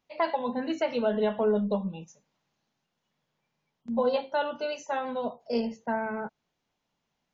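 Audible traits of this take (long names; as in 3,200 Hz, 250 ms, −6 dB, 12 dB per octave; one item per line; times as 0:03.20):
background noise floor −82 dBFS
spectral slope −4.5 dB per octave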